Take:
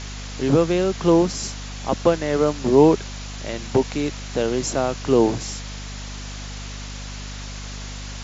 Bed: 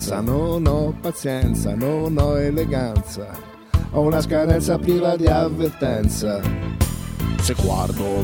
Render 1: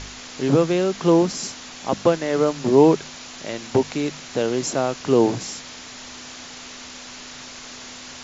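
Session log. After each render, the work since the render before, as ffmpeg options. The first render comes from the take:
-af "bandreject=f=50:t=h:w=4,bandreject=f=100:t=h:w=4,bandreject=f=150:t=h:w=4,bandreject=f=200:t=h:w=4"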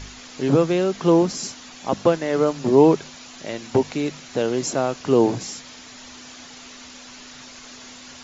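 -af "afftdn=nr=6:nf=-39"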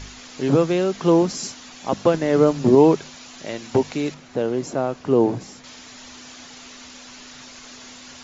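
-filter_complex "[0:a]asettb=1/sr,asplit=3[a][b][c];[a]atrim=end=2.144[d];[b]atrim=start=2.14:end=2.75,asetpts=PTS-STARTPTS,afade=t=in:d=0.004:c=qsin,afade=t=out:st=0.606:d=0.004:c=qsin,lowshelf=f=430:g=7.5[e];[c]atrim=start=2.746[f];[d][e]acrossfade=d=0.004:c1=hsin:c2=qsin[g];[g][f]acrossfade=d=0.004:c1=qsin:c2=hsin,asettb=1/sr,asplit=3[h][i][j];[h]atrim=end=4.144[k];[i]atrim=start=4.14:end=5.64,asetpts=PTS-STARTPTS,afade=t=in:d=0.004:c=qsin,afade=t=out:st=1.496:d=0.004:c=qsin,highshelf=f=2.2k:g=-11.5[l];[j]atrim=start=5.636[m];[k][l]acrossfade=d=0.004:c1=hsin:c2=qsin[n];[n][m]acrossfade=d=0.004:c1=qsin:c2=hsin"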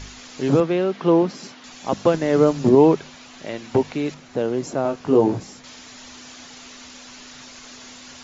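-filter_complex "[0:a]asettb=1/sr,asplit=3[a][b][c];[a]atrim=end=0.604[d];[b]atrim=start=0.6:end=1.64,asetpts=PTS-STARTPTS,afade=t=in:d=0.004:c=qsin,afade=t=out:st=1.036:d=0.004:c=qsin,highpass=150,lowpass=3.3k[e];[c]atrim=start=1.636[f];[d][e]acrossfade=d=0.004:c1=hsin:c2=qsin[g];[g][f]acrossfade=d=0.004:c1=qsin:c2=hsin,asettb=1/sr,asplit=3[h][i][j];[h]atrim=end=2.694[k];[i]atrim=start=2.69:end=4.09,asetpts=PTS-STARTPTS,afade=t=in:d=0.004:c=qsin,afade=t=out:st=1.396:d=0.004:c=qsin,acrossover=split=3900[l][m];[m]acompressor=threshold=-49dB:ratio=4:attack=1:release=60[n];[l][n]amix=inputs=2:normalize=0[o];[j]atrim=start=4.086[p];[k][o]acrossfade=d=0.004:c1=hsin:c2=qsin[q];[q][p]acrossfade=d=0.004:c1=qsin:c2=hsin,asettb=1/sr,asplit=3[r][s][t];[r]atrim=end=4.834[u];[s]atrim=start=4.83:end=5.4,asetpts=PTS-STARTPTS,afade=t=in:d=0.004:c=qsin,afade=t=out:st=0.566:d=0.004:c=qsin,asplit=2[v][w];[w]adelay=19,volume=-4dB[x];[v][x]amix=inputs=2:normalize=0,atrim=end_sample=25137[y];[t]atrim=start=5.396[z];[u][y]acrossfade=d=0.004:c1=hsin:c2=qsin[aa];[aa][z]acrossfade=d=0.004:c1=qsin:c2=hsin"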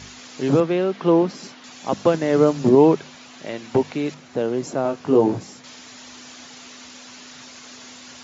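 -af "highpass=93"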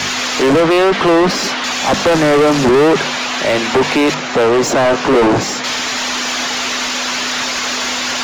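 -filter_complex "[0:a]acrossover=split=140|560|2100[a][b][c][d];[c]asoftclip=type=tanh:threshold=-28.5dB[e];[a][b][e][d]amix=inputs=4:normalize=0,asplit=2[f][g];[g]highpass=f=720:p=1,volume=36dB,asoftclip=type=tanh:threshold=-4dB[h];[f][h]amix=inputs=2:normalize=0,lowpass=f=3.1k:p=1,volume=-6dB"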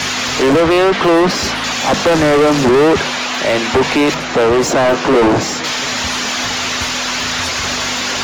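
-filter_complex "[1:a]volume=-11.5dB[a];[0:a][a]amix=inputs=2:normalize=0"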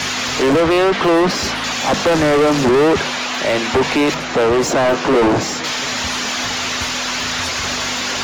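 -af "volume=-2.5dB"

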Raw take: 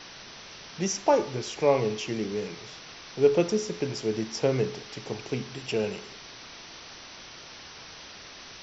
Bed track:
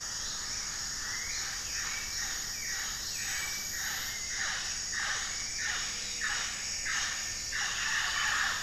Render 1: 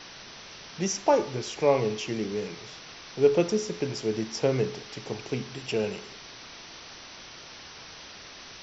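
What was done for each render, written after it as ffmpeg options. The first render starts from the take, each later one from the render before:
-af anull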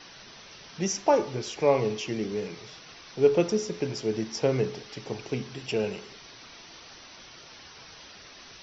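-af "afftdn=nr=6:nf=-46"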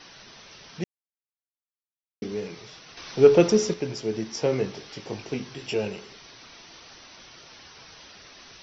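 -filter_complex "[0:a]asettb=1/sr,asplit=3[a][b][c];[a]atrim=end=2.974[d];[b]atrim=start=2.97:end=3.74,asetpts=PTS-STARTPTS,afade=t=in:d=0.004:c=qsin,afade=t=out:st=0.766:d=0.004:c=qsin,acontrast=71[e];[c]atrim=start=3.736[f];[d][e]acrossfade=d=0.004:c1=hsin:c2=qsin[g];[g][f]acrossfade=d=0.004:c1=qsin:c2=hsin,asettb=1/sr,asplit=3[h][i][j];[h]atrim=end=4.314[k];[i]atrim=start=4.31:end=5.88,asetpts=PTS-STARTPTS,afade=t=in:d=0.004:c=qsin,afade=t=out:st=1.566:d=0.004:c=qsin,asplit=2[l][m];[m]adelay=20,volume=-5dB[n];[l][n]amix=inputs=2:normalize=0,atrim=end_sample=69237[o];[j]atrim=start=5.876[p];[k][o]acrossfade=d=0.004:c1=hsin:c2=qsin[q];[q][p]acrossfade=d=0.004:c1=qsin:c2=hsin,asplit=3[r][s][t];[r]atrim=end=0.84,asetpts=PTS-STARTPTS,afade=t=out:st=0.836:d=0.004:c=hsin[u];[s]atrim=start=0.84:end=2.22,asetpts=PTS-STARTPTS,volume=0[v];[t]atrim=start=2.22,asetpts=PTS-STARTPTS,afade=t=in:d=0.004:c=hsin[w];[u][v][w]concat=n=3:v=0:a=1"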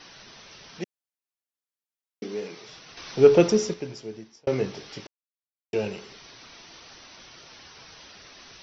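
-filter_complex "[0:a]asettb=1/sr,asplit=3[a][b][c];[a]atrim=end=0.784[d];[b]atrim=start=0.78:end=2.69,asetpts=PTS-STARTPTS,afade=t=in:d=0.004:c=qsin,afade=t=out:st=1.906:d=0.004:c=qsin,highpass=230[e];[c]atrim=start=2.686[f];[d][e]acrossfade=d=0.004:c1=hsin:c2=qsin[g];[g][f]acrossfade=d=0.004:c1=qsin:c2=hsin,asplit=4[h][i][j][k];[h]atrim=end=4.47,asetpts=PTS-STARTPTS,afade=t=out:st=3.41:d=1.06[l];[i]atrim=start=4.47:end=5.07,asetpts=PTS-STARTPTS,afade=t=in:d=0.004:c=hsin,afade=t=out:st=0.596:d=0.004:c=hsin[m];[j]atrim=start=5.07:end=5.73,asetpts=PTS-STARTPTS,volume=0[n];[k]atrim=start=5.73,asetpts=PTS-STARTPTS,afade=t=in:d=0.004:c=hsin[o];[l][m][n][o]concat=n=4:v=0:a=1"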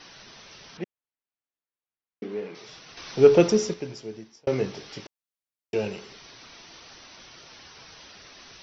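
-filter_complex "[0:a]asettb=1/sr,asplit=3[a][b][c];[a]atrim=end=0.774[d];[b]atrim=start=0.77:end=2.55,asetpts=PTS-STARTPTS,afade=t=in:d=0.004:c=qsin,afade=t=out:st=1.776:d=0.004:c=qsin,lowpass=2.5k[e];[c]atrim=start=2.546[f];[d][e]acrossfade=d=0.004:c1=hsin:c2=qsin[g];[g][f]acrossfade=d=0.004:c1=qsin:c2=hsin"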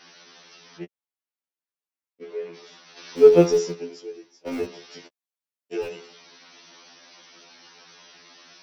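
-filter_complex "[0:a]acrossover=split=150[a][b];[a]acrusher=bits=5:mix=0:aa=0.000001[c];[c][b]amix=inputs=2:normalize=0,afftfilt=real='re*2*eq(mod(b,4),0)':imag='im*2*eq(mod(b,4),0)':win_size=2048:overlap=0.75"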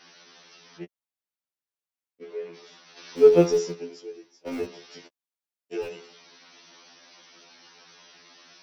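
-af "volume=-2.5dB"

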